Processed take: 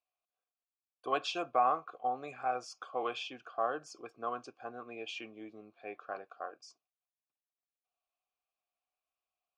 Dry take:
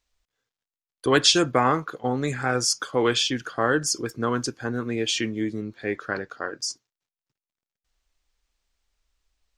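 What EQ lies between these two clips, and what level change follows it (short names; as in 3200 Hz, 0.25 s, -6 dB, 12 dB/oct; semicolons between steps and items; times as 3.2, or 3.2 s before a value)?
vowel filter a; 0.0 dB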